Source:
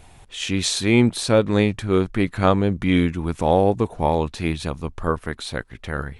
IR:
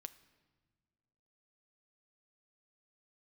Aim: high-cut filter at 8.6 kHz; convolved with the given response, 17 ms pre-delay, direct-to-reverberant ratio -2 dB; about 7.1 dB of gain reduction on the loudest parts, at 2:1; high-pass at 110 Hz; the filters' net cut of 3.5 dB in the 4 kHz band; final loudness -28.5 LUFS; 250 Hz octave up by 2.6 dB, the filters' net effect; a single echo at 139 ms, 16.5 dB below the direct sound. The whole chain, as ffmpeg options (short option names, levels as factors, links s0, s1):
-filter_complex "[0:a]highpass=110,lowpass=8600,equalizer=f=250:t=o:g=3.5,equalizer=f=4000:t=o:g=-4,acompressor=threshold=0.0708:ratio=2,aecho=1:1:139:0.15,asplit=2[s0][s1];[1:a]atrim=start_sample=2205,adelay=17[s2];[s1][s2]afir=irnorm=-1:irlink=0,volume=2.37[s3];[s0][s3]amix=inputs=2:normalize=0,volume=0.447"